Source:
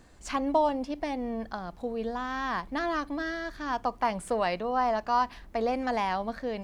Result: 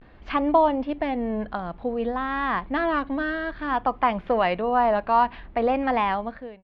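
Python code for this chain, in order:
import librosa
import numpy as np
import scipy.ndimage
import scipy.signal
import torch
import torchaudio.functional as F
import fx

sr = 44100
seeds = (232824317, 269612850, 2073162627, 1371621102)

y = fx.fade_out_tail(x, sr, length_s=0.58)
y = fx.vibrato(y, sr, rate_hz=0.55, depth_cents=80.0)
y = scipy.signal.sosfilt(scipy.signal.cheby2(4, 50, 7800.0, 'lowpass', fs=sr, output='sos'), y)
y = y * 10.0 ** (6.0 / 20.0)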